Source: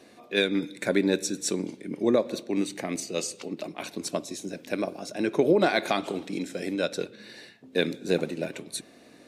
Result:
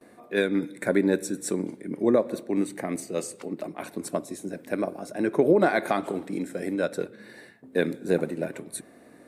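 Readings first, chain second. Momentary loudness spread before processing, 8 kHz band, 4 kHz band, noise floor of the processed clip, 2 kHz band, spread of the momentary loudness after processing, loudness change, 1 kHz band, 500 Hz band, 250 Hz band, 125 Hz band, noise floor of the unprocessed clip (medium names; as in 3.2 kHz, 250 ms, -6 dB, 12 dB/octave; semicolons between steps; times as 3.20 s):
12 LU, -3.0 dB, -9.5 dB, -53 dBFS, -0.5 dB, 13 LU, +1.0 dB, +1.5 dB, +1.5 dB, +1.5 dB, +1.5 dB, -53 dBFS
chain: gate with hold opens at -44 dBFS; high-order bell 4.1 kHz -11 dB; trim +1.5 dB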